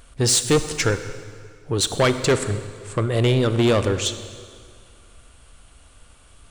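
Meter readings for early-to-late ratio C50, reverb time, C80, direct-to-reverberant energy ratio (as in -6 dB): 10.5 dB, 2.0 s, 12.0 dB, 10.0 dB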